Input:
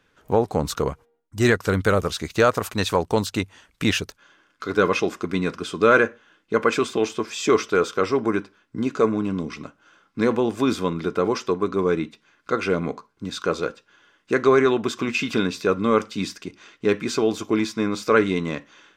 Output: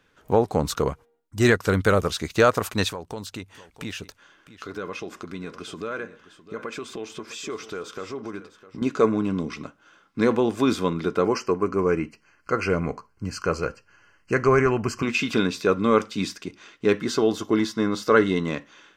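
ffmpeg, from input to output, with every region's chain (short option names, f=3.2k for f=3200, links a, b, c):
-filter_complex "[0:a]asettb=1/sr,asplit=3[a][b][c];[a]atrim=end=2.894[d];[b]atrim=start=2.89:end=8.82,asetpts=PTS-STARTPTS,afade=t=in:d=0.004:c=qsin,afade=t=out:st=5.926:d=0.004:c=qsin,acompressor=threshold=-36dB:ratio=2.5:attack=3.2:release=140:knee=1:detection=peak,aecho=1:1:656:0.168,atrim=end_sample=261513[e];[c]atrim=start=8.816[f];[d][e]acrossfade=d=0.004:c1=hsin:c2=qsin[g];[g][f]acrossfade=d=0.004:c1=qsin:c2=hsin,asettb=1/sr,asplit=3[h][i][j];[h]atrim=end=11.254[k];[i]atrim=start=11.25:end=15.03,asetpts=PTS-STARTPTS,afade=t=in:d=0.004:c=qsin,afade=t=out:st=3.776:d=0.004:c=qsin,asuperstop=centerf=3600:order=12:qfactor=3.3,asubboost=boost=7.5:cutoff=110[l];[j]atrim=start=15.026[m];[k][l]acrossfade=d=0.004:c1=hsin:c2=qsin[n];[n][m]acrossfade=d=0.004:c1=qsin:c2=hsin,asettb=1/sr,asplit=3[o][p][q];[o]atrim=end=17.004[r];[p]atrim=start=17:end=18.48,asetpts=PTS-STARTPTS,afade=t=in:d=0.004:c=qsin,afade=t=out:st=1.476:d=0.004:c=qsin,asuperstop=centerf=2400:order=4:qfactor=6.4,equalizer=f=7.7k:w=2.2:g=-3[s];[q]atrim=start=18.476[t];[r][s]acrossfade=d=0.004:c1=hsin:c2=qsin[u];[u][t]acrossfade=d=0.004:c1=qsin:c2=hsin"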